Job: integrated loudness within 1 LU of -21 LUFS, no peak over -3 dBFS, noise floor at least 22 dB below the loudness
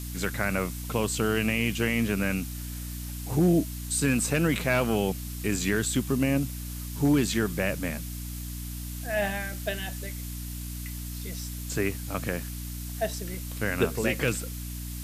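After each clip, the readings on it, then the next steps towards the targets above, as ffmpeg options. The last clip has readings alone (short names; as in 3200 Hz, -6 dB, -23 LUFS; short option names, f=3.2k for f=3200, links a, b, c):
hum 60 Hz; harmonics up to 300 Hz; hum level -34 dBFS; noise floor -36 dBFS; noise floor target -51 dBFS; loudness -28.5 LUFS; peak -11.0 dBFS; loudness target -21.0 LUFS
-> -af "bandreject=f=60:t=h:w=6,bandreject=f=120:t=h:w=6,bandreject=f=180:t=h:w=6,bandreject=f=240:t=h:w=6,bandreject=f=300:t=h:w=6"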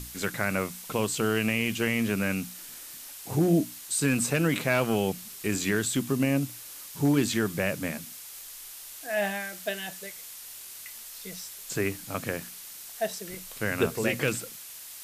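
hum none; noise floor -44 dBFS; noise floor target -51 dBFS
-> -af "afftdn=nr=7:nf=-44"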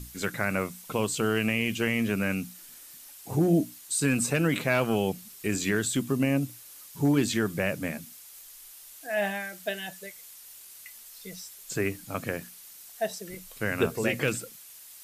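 noise floor -49 dBFS; noise floor target -51 dBFS
-> -af "afftdn=nr=6:nf=-49"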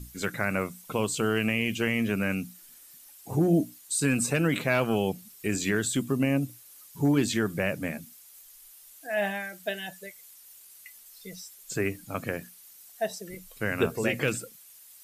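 noise floor -52 dBFS; loudness -28.5 LUFS; peak -11.0 dBFS; loudness target -21.0 LUFS
-> -af "volume=7.5dB"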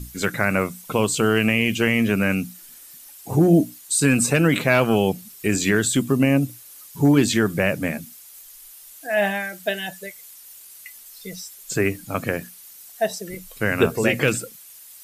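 loudness -21.0 LUFS; peak -3.5 dBFS; noise floor -45 dBFS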